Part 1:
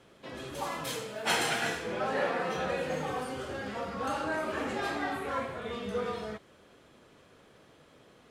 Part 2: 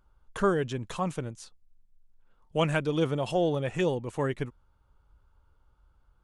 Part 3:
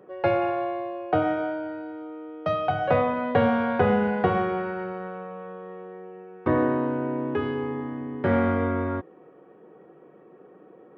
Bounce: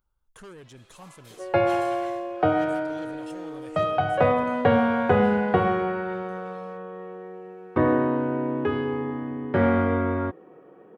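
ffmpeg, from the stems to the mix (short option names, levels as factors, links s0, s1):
-filter_complex "[0:a]highpass=f=870:p=1,adelay=400,volume=0.188[s0];[1:a]aemphasis=mode=production:type=50kf,asoftclip=type=tanh:threshold=0.0398,volume=0.224[s1];[2:a]adelay=1300,volume=1.19[s2];[s0][s1][s2]amix=inputs=3:normalize=0"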